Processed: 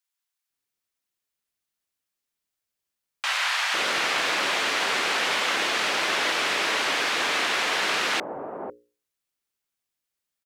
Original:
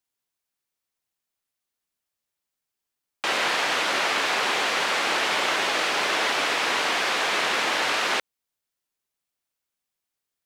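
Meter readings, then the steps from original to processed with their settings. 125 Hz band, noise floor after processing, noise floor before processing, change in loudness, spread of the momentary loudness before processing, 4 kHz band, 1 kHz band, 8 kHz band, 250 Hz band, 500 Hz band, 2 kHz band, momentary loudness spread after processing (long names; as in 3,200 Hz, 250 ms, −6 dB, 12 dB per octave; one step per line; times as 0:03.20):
−0.5 dB, −85 dBFS, −85 dBFS, −0.5 dB, 1 LU, 0.0 dB, −2.0 dB, 0.0 dB, −1.0 dB, −2.0 dB, −0.5 dB, 6 LU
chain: mains-hum notches 60/120/180/240/300/360/420/480/540 Hz
multiband delay without the direct sound highs, lows 500 ms, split 800 Hz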